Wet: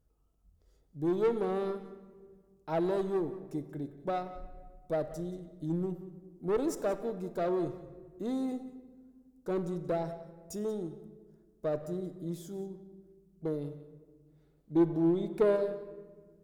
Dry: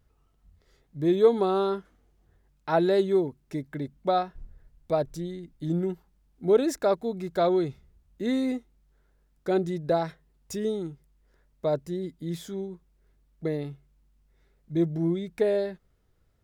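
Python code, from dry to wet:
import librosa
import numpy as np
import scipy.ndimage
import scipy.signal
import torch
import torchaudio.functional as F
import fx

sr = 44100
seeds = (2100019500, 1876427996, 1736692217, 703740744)

p1 = fx.graphic_eq(x, sr, hz=(125, 1000, 2000, 4000), db=(-5, -3, -12, -6))
p2 = fx.tube_stage(p1, sr, drive_db=18.0, bias=0.4)
p3 = np.clip(p2, -10.0 ** (-28.5 / 20.0), 10.0 ** (-28.5 / 20.0))
p4 = p2 + (p3 * 10.0 ** (-6.5 / 20.0))
p5 = fx.spec_box(p4, sr, start_s=14.26, length_s=1.3, low_hz=210.0, high_hz=4800.0, gain_db=6)
p6 = p5 + fx.echo_single(p5, sr, ms=181, db=-16.5, dry=0)
p7 = fx.room_shoebox(p6, sr, seeds[0], volume_m3=1800.0, walls='mixed', distance_m=0.58)
y = p7 * 10.0 ** (-6.0 / 20.0)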